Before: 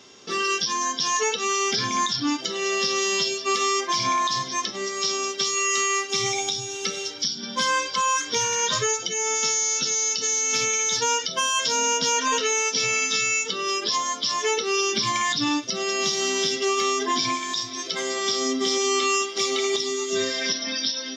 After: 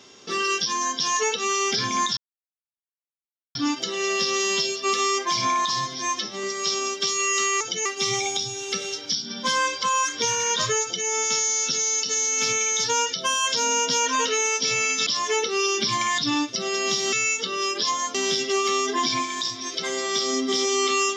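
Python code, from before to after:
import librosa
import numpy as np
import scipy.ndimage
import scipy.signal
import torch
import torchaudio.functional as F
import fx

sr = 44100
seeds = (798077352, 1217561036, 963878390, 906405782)

y = fx.edit(x, sr, fx.insert_silence(at_s=2.17, length_s=1.38),
    fx.stretch_span(start_s=4.32, length_s=0.49, factor=1.5),
    fx.duplicate(start_s=8.95, length_s=0.25, to_s=5.98),
    fx.move(start_s=13.19, length_s=1.02, to_s=16.27), tone=tone)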